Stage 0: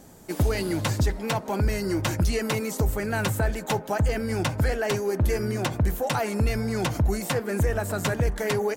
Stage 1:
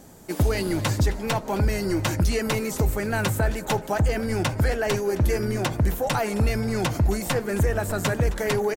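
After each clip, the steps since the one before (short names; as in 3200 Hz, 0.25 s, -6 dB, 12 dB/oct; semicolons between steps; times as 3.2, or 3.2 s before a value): frequency-shifting echo 0.265 s, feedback 44%, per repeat -71 Hz, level -18 dB; gain +1.5 dB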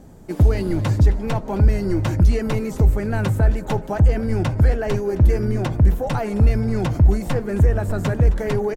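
tilt -2.5 dB/oct; gain -1.5 dB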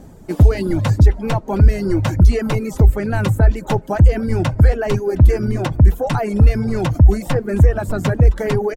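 reverb removal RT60 0.76 s; gain +4.5 dB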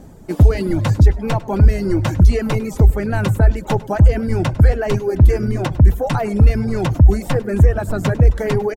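echo 0.101 s -19.5 dB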